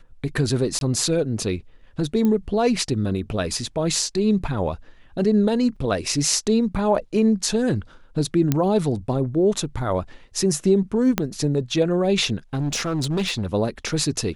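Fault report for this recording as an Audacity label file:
0.790000	0.810000	gap 22 ms
2.250000	2.250000	pop -12 dBFS
5.760000	5.760000	gap 4.9 ms
8.520000	8.520000	pop -6 dBFS
11.180000	11.180000	pop -5 dBFS
12.540000	13.540000	clipped -19 dBFS

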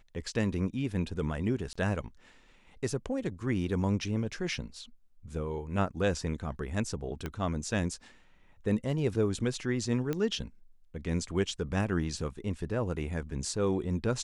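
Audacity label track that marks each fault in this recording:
1.730000	1.750000	gap 25 ms
7.260000	7.260000	pop -21 dBFS
10.130000	10.130000	pop -19 dBFS

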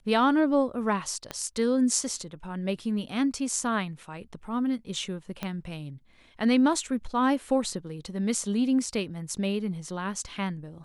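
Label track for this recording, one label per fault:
1.310000	1.310000	pop -18 dBFS
5.430000	5.430000	pop -17 dBFS

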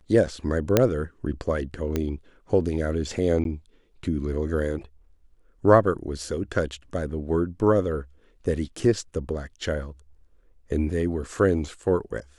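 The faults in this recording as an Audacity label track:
0.770000	0.770000	pop -3 dBFS
1.960000	1.960000	pop -12 dBFS
3.440000	3.450000	gap 12 ms

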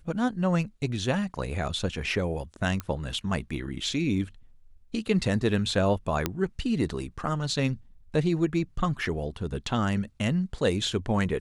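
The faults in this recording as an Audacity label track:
2.800000	2.800000	pop -18 dBFS
6.260000	6.260000	pop -10 dBFS

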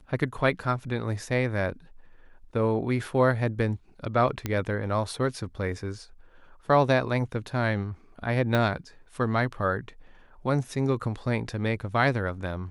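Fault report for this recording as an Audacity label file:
4.460000	4.460000	pop -14 dBFS
8.550000	8.550000	pop -13 dBFS

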